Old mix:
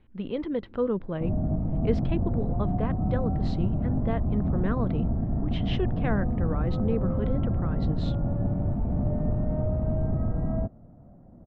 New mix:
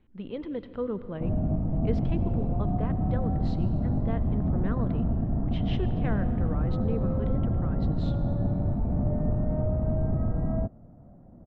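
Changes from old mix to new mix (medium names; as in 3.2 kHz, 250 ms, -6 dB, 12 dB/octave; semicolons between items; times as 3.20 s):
speech -5.5 dB; reverb: on, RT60 1.9 s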